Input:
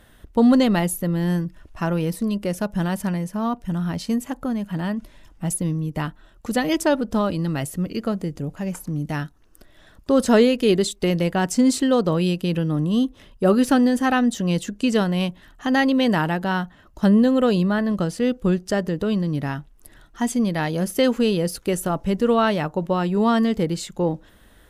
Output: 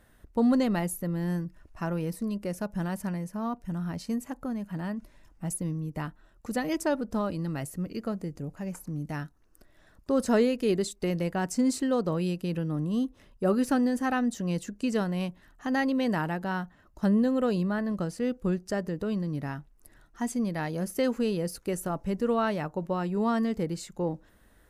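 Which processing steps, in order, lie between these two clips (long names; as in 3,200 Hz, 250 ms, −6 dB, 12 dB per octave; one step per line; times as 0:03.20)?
parametric band 3,300 Hz −7.5 dB 0.46 octaves
level −8 dB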